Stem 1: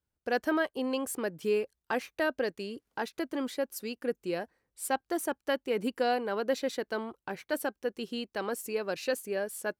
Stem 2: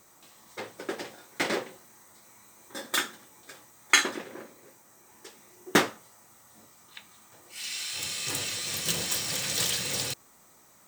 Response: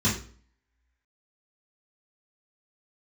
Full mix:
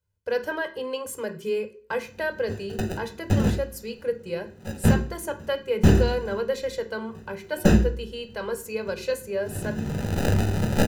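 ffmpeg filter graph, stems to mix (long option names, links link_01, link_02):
-filter_complex "[0:a]aecho=1:1:2:0.63,volume=0dB,asplit=3[link_01][link_02][link_03];[link_02]volume=-18.5dB[link_04];[1:a]acrusher=samples=40:mix=1:aa=0.000001,aeval=exprs='0.501*(cos(1*acos(clip(val(0)/0.501,-1,1)))-cos(1*PI/2))+0.2*(cos(8*acos(clip(val(0)/0.501,-1,1)))-cos(8*PI/2))':channel_layout=same,adelay=1900,volume=2.5dB,asplit=2[link_05][link_06];[link_06]volume=-19dB[link_07];[link_03]apad=whole_len=563294[link_08];[link_05][link_08]sidechaincompress=threshold=-42dB:ratio=4:attack=11:release=349[link_09];[2:a]atrim=start_sample=2205[link_10];[link_04][link_07]amix=inputs=2:normalize=0[link_11];[link_11][link_10]afir=irnorm=-1:irlink=0[link_12];[link_01][link_09][link_12]amix=inputs=3:normalize=0"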